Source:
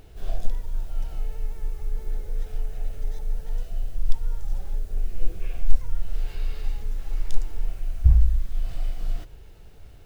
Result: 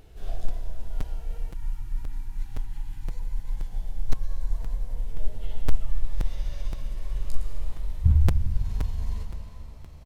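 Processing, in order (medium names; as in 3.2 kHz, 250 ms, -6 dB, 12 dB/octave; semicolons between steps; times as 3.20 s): pitch bend over the whole clip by +7 st starting unshifted; time-frequency box 2.64–3.69 s, 340–780 Hz -13 dB; reverberation RT60 3.5 s, pre-delay 108 ms, DRR 3.5 dB; time-frequency box 1.51–3.08 s, 350–760 Hz -27 dB; resampled via 32 kHz; crackling interface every 0.52 s, samples 256, repeat, from 0.48 s; trim -3 dB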